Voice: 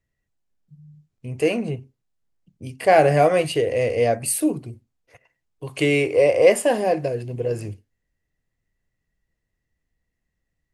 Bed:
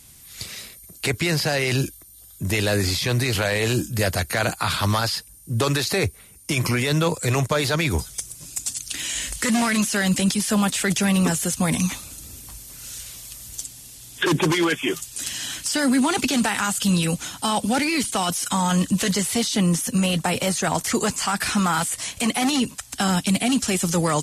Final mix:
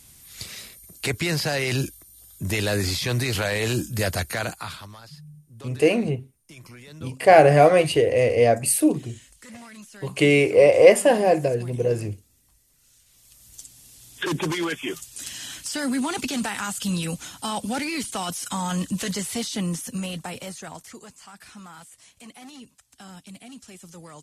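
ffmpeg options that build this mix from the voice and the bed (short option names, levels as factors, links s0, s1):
-filter_complex "[0:a]adelay=4400,volume=1.26[s0];[1:a]volume=5.31,afade=t=out:st=4.2:d=0.68:silence=0.0944061,afade=t=in:st=13.06:d=0.95:silence=0.141254,afade=t=out:st=19.43:d=1.58:silence=0.149624[s1];[s0][s1]amix=inputs=2:normalize=0"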